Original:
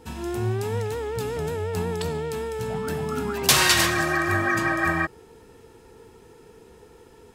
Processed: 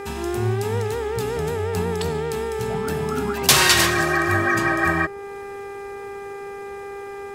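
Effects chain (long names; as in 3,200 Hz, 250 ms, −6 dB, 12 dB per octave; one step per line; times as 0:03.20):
hum with harmonics 400 Hz, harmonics 6, −38 dBFS −8 dB per octave
one half of a high-frequency compander encoder only
level +3 dB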